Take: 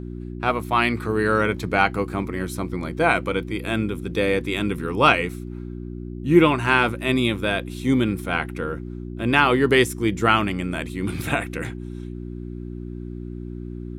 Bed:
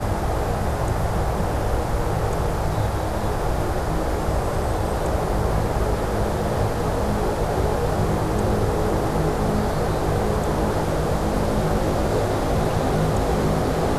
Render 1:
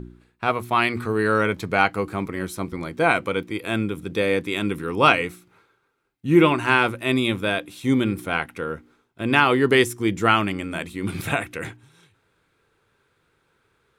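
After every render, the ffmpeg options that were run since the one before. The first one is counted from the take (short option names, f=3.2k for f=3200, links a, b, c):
-af "bandreject=f=60:t=h:w=4,bandreject=f=120:t=h:w=4,bandreject=f=180:t=h:w=4,bandreject=f=240:t=h:w=4,bandreject=f=300:t=h:w=4,bandreject=f=360:t=h:w=4"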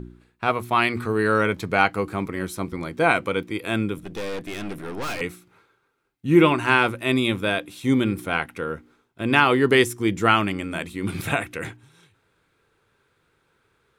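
-filter_complex "[0:a]asettb=1/sr,asplit=3[a][b][c];[a]atrim=end=3.984[d];[b]atrim=start=3.98:end=5.21,asetpts=PTS-STARTPTS,afade=t=in:d=0.004:c=qsin,afade=t=out:st=1.226:d=0.004:c=qsin,aeval=exprs='(tanh(25.1*val(0)+0.6)-tanh(0.6))/25.1':c=same[e];[c]atrim=start=5.206[f];[d][e]acrossfade=d=0.004:c1=hsin:c2=qsin[g];[g][f]acrossfade=d=0.004:c1=qsin:c2=hsin"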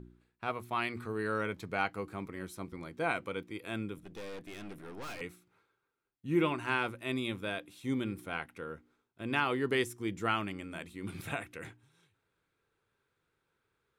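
-af "volume=-13.5dB"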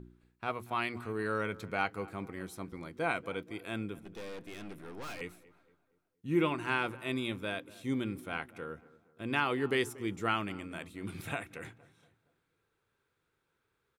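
-filter_complex "[0:a]asplit=2[a][b];[b]adelay=234,lowpass=f=1.6k:p=1,volume=-19dB,asplit=2[c][d];[d]adelay=234,lowpass=f=1.6k:p=1,volume=0.47,asplit=2[e][f];[f]adelay=234,lowpass=f=1.6k:p=1,volume=0.47,asplit=2[g][h];[h]adelay=234,lowpass=f=1.6k:p=1,volume=0.47[i];[a][c][e][g][i]amix=inputs=5:normalize=0"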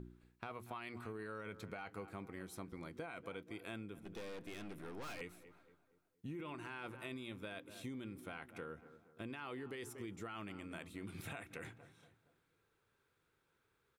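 -af "alimiter=level_in=2.5dB:limit=-24dB:level=0:latency=1:release=13,volume=-2.5dB,acompressor=threshold=-44dB:ratio=6"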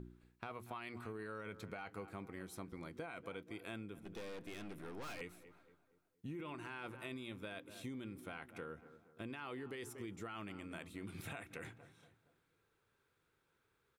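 -af anull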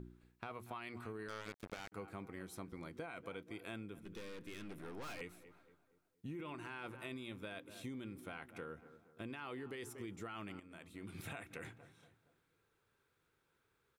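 -filter_complex "[0:a]asettb=1/sr,asplit=3[a][b][c];[a]atrim=end=1.284[d];[b]atrim=start=1.28:end=1.92,asetpts=PTS-STARTPTS,afade=t=in:d=0.004:c=qsin,afade=t=out:st=0.636:d=0.004:c=qsin,acrusher=bits=6:mix=0:aa=0.5[e];[c]atrim=start=1.916[f];[d][e]acrossfade=d=0.004:c1=hsin:c2=qsin[g];[g][f]acrossfade=d=0.004:c1=qsin:c2=hsin,asettb=1/sr,asplit=3[h][i][j];[h]atrim=end=4.014[k];[i]atrim=start=4.01:end=4.69,asetpts=PTS-STARTPTS,afade=t=in:d=0.004:c=qsin,afade=t=out:st=0.676:d=0.004:c=qsin,equalizer=f=720:t=o:w=0.46:g=-15[l];[j]atrim=start=4.686[m];[k][l]acrossfade=d=0.004:c1=hsin:c2=qsin[n];[n][m]acrossfade=d=0.004:c1=qsin:c2=hsin,asplit=2[o][p];[o]atrim=end=10.6,asetpts=PTS-STARTPTS,afade=t=out:st=10.596:d=0.004:c=hsin:silence=0.251189[q];[p]atrim=start=10.6,asetpts=PTS-STARTPTS,afade=t=in:d=0.61:silence=0.251189[r];[q][r]concat=n=2:v=0:a=1"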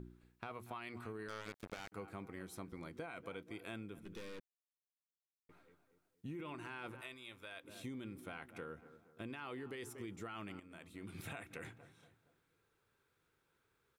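-filter_complex "[0:a]asettb=1/sr,asplit=3[a][b][c];[a]atrim=end=7.014[d];[b]atrim=start=7.01:end=7.64,asetpts=PTS-STARTPTS,afade=t=in:d=0.004:c=qsin,afade=t=out:st=0.626:d=0.004:c=qsin,equalizer=f=190:t=o:w=2.5:g=-15[e];[c]atrim=start=7.636[f];[d][e]acrossfade=d=0.004:c1=hsin:c2=qsin[g];[g][f]acrossfade=d=0.004:c1=qsin:c2=hsin,asplit=3[h][i][j];[h]atrim=end=4.4,asetpts=PTS-STARTPTS,afade=t=out:st=4.396:d=0.004:c=hsin[k];[i]atrim=start=4.4:end=5.49,asetpts=PTS-STARTPTS,volume=0[l];[j]atrim=start=5.49,asetpts=PTS-STARTPTS,afade=t=in:d=0.004:c=hsin[m];[k][l][m]concat=n=3:v=0:a=1"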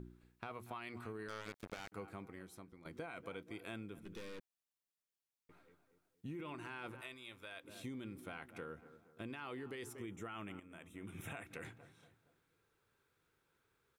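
-filter_complex "[0:a]asettb=1/sr,asplit=3[a][b][c];[a]atrim=end=10.004[d];[b]atrim=start=10:end=11.45,asetpts=PTS-STARTPTS,afade=t=in:d=0.004:c=qsin,afade=t=out:st=1.446:d=0.004:c=qsin,asuperstop=centerf=4500:order=4:qfactor=2.2[e];[c]atrim=start=11.446[f];[d][e]acrossfade=d=0.004:c1=hsin:c2=qsin[g];[g][f]acrossfade=d=0.004:c1=qsin:c2=hsin,asplit=2[h][i];[h]atrim=end=2.85,asetpts=PTS-STARTPTS,afade=t=out:st=2.03:d=0.82:silence=0.223872[j];[i]atrim=start=2.85,asetpts=PTS-STARTPTS,afade=t=in:d=0.004:c=hsin:silence=0.223872[k];[j][k]concat=n=2:v=0:a=1"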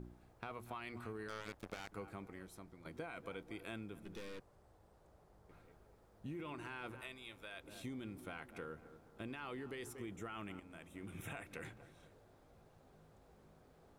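-filter_complex "[1:a]volume=-44.5dB[a];[0:a][a]amix=inputs=2:normalize=0"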